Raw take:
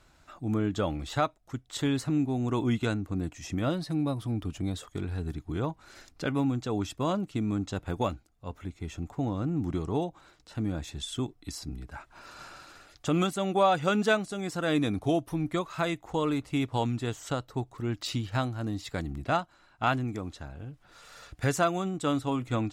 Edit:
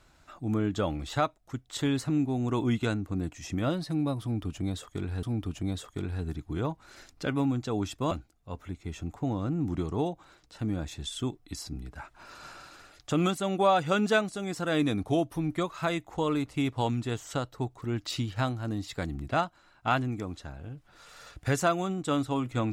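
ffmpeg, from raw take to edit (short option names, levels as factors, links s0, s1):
-filter_complex "[0:a]asplit=3[s0][s1][s2];[s0]atrim=end=5.232[s3];[s1]atrim=start=4.218:end=7.102[s4];[s2]atrim=start=8.068[s5];[s3][s4]acrossfade=d=0.004:c1=hsin:c2=hsin[s6];[s6][s5]acrossfade=d=0.004:c1=hsin:c2=hsin"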